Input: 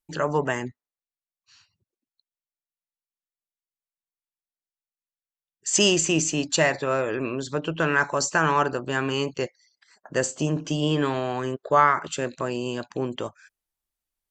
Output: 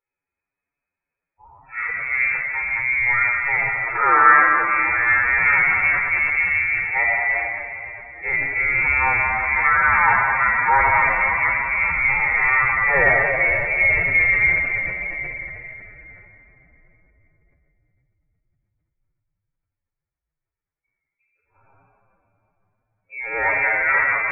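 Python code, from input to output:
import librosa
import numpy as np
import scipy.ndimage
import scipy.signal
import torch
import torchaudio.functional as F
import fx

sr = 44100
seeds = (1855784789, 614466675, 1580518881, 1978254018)

p1 = x[::-1].copy()
p2 = fx.highpass(p1, sr, hz=55.0, slope=6)
p3 = fx.hum_notches(p2, sr, base_hz=50, count=6)
p4 = fx.dynamic_eq(p3, sr, hz=200.0, q=4.3, threshold_db=-49.0, ratio=4.0, max_db=-6)
p5 = fx.level_steps(p4, sr, step_db=15)
p6 = p4 + (p5 * 10.0 ** (2.0 / 20.0))
p7 = fx.echo_stepped(p6, sr, ms=178, hz=150.0, octaves=0.7, feedback_pct=70, wet_db=-9.0)
p8 = fx.freq_invert(p7, sr, carrier_hz=2500)
p9 = fx.room_shoebox(p8, sr, seeds[0], volume_m3=3700.0, walls='mixed', distance_m=4.3)
p10 = fx.stretch_vocoder(p9, sr, factor=1.7)
p11 = fx.sustainer(p10, sr, db_per_s=37.0)
y = p11 * 10.0 ** (-2.5 / 20.0)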